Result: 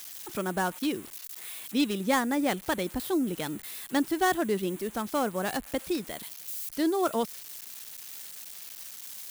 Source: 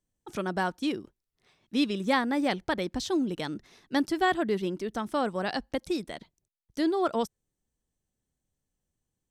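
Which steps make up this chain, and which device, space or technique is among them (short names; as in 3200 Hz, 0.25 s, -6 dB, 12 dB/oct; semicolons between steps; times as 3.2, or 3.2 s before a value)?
budget class-D amplifier (switching dead time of 0.081 ms; switching spikes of -27 dBFS)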